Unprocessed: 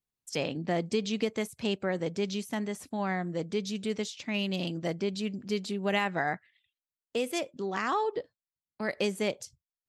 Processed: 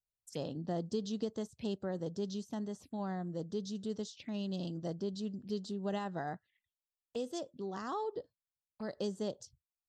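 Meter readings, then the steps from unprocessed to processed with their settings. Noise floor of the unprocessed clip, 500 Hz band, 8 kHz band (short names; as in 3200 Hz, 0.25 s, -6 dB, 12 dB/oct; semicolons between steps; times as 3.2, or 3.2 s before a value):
under -85 dBFS, -7.5 dB, -9.5 dB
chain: envelope phaser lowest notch 260 Hz, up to 2300 Hz, full sweep at -32.5 dBFS; low shelf 140 Hz +7 dB; gain -7.5 dB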